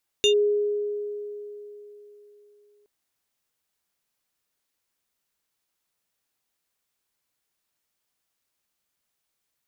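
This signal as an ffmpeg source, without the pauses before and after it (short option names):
-f lavfi -i "aevalsrc='0.178*pow(10,-3*t/3.56)*sin(2*PI*414*t+1.4*clip(1-t/0.1,0,1)*sin(2*PI*7.76*414*t))':d=2.62:s=44100"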